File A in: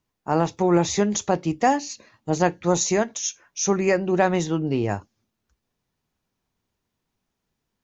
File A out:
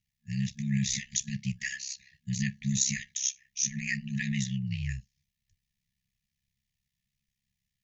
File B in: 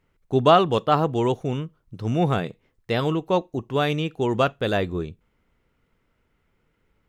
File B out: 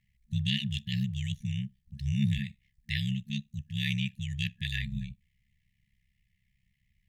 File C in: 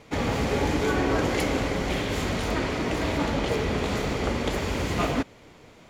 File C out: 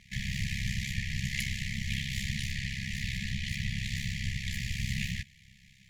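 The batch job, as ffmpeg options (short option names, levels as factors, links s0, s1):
-af "afftfilt=real='re*(1-between(b*sr/4096,190,1700))':imag='im*(1-between(b*sr/4096,190,1700))':win_size=4096:overlap=0.75,aeval=exprs='val(0)*sin(2*PI*33*n/s)':c=same"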